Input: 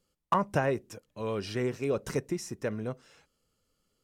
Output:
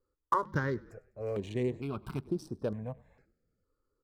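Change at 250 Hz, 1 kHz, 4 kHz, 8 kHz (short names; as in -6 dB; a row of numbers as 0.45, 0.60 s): -2.5, -2.0, -9.0, -13.5 dB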